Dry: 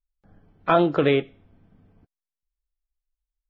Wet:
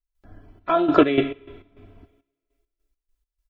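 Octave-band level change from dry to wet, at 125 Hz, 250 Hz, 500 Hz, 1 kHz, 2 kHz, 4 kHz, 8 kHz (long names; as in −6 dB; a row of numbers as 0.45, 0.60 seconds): −5.5 dB, +4.0 dB, +0.5 dB, +0.5 dB, −1.0 dB, 0.0 dB, can't be measured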